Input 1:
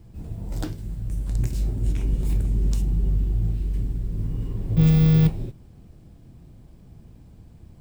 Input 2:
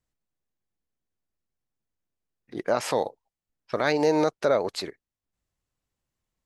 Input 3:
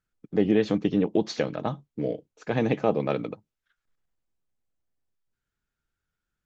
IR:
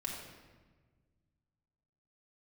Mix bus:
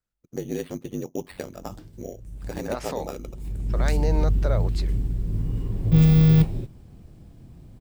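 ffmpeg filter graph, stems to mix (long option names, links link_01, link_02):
-filter_complex "[0:a]adelay=1150,volume=1dB[link_01];[1:a]volume=-7dB[link_02];[2:a]lowpass=5300,acrusher=samples=7:mix=1:aa=0.000001,aeval=exprs='val(0)*sin(2*PI*47*n/s)':channel_layout=same,volume=-5.5dB,asplit=2[link_03][link_04];[link_04]apad=whole_len=394803[link_05];[link_01][link_05]sidechaincompress=threshold=-55dB:ratio=3:attack=8.2:release=390[link_06];[link_06][link_02][link_03]amix=inputs=3:normalize=0"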